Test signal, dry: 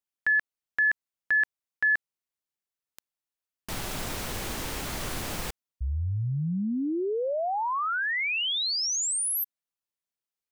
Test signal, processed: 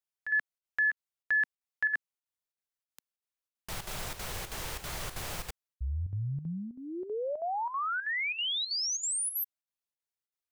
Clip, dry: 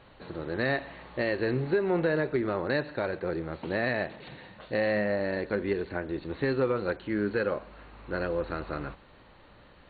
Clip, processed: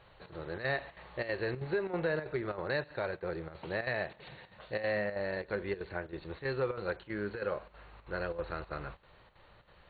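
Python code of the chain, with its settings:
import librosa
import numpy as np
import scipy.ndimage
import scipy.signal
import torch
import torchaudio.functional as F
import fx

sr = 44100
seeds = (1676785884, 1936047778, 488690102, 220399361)

y = fx.peak_eq(x, sr, hz=260.0, db=-12.0, octaves=0.66)
y = fx.chopper(y, sr, hz=3.1, depth_pct=65, duty_pct=80)
y = y * librosa.db_to_amplitude(-3.5)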